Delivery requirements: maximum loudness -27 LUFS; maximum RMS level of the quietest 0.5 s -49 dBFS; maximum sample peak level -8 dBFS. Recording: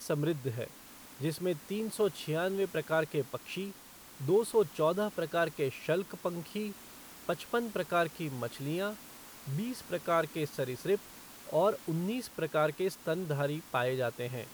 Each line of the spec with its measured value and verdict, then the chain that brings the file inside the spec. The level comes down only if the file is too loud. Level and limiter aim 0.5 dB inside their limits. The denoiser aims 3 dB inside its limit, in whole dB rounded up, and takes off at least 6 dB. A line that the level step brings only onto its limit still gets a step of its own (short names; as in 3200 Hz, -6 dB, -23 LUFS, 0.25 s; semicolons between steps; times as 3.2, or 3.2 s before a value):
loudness -33.5 LUFS: OK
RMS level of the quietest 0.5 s -52 dBFS: OK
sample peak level -17.0 dBFS: OK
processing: none